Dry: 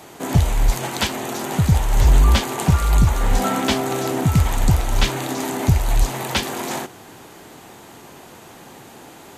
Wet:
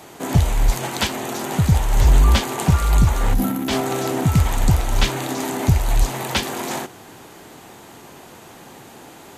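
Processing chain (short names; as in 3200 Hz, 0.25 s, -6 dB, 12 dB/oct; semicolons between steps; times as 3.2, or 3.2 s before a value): 3.34–3.69 spectral gain 360–10000 Hz -13 dB; 3.28–3.81 transient shaper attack -7 dB, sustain +6 dB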